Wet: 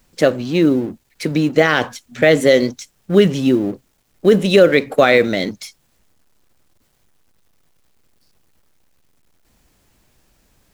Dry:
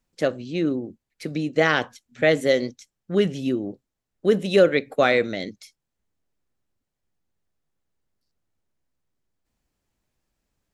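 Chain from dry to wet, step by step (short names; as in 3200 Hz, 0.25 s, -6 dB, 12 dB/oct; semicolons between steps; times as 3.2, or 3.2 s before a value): G.711 law mismatch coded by mu; limiter -10.5 dBFS, peak gain reduction 6 dB; gain +9 dB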